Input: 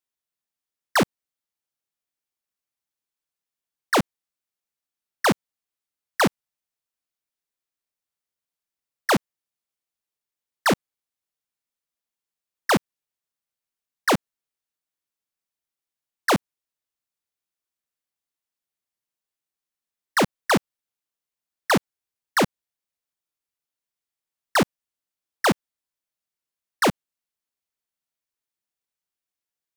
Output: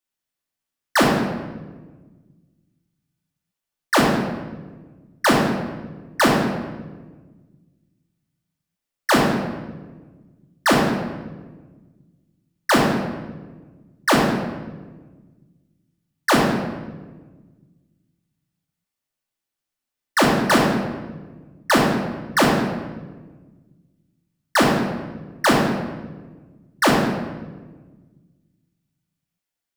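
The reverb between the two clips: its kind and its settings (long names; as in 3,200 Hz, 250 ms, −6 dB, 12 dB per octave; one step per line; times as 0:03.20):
rectangular room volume 1,000 cubic metres, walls mixed, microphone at 2.5 metres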